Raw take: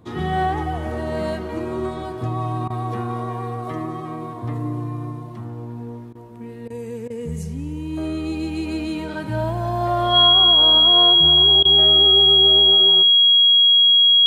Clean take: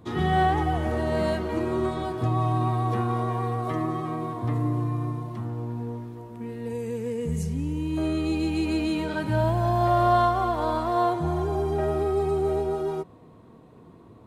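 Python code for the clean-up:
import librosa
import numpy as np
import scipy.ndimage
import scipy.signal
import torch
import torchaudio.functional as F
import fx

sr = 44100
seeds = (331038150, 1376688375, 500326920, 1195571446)

y = fx.notch(x, sr, hz=3300.0, q=30.0)
y = fx.fix_interpolate(y, sr, at_s=(2.68, 6.13, 6.68, 7.08, 11.63), length_ms=20.0)
y = fx.fix_echo_inverse(y, sr, delay_ms=80, level_db=-18.5)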